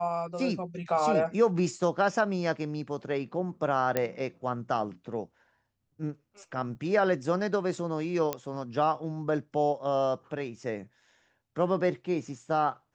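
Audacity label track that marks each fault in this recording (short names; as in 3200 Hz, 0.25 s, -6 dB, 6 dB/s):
3.970000	3.970000	pop -12 dBFS
6.750000	6.750000	gap 3.2 ms
8.330000	8.330000	pop -14 dBFS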